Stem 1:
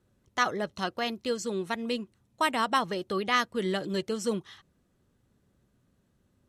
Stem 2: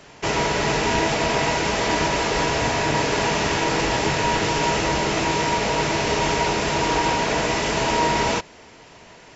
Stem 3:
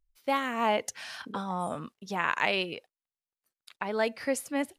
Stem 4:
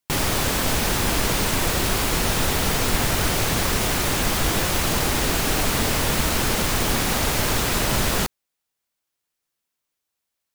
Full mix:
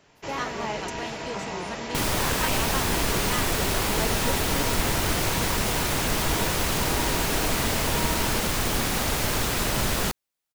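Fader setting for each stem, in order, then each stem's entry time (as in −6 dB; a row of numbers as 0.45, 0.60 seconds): −7.0, −13.0, −6.0, −3.5 decibels; 0.00, 0.00, 0.00, 1.85 seconds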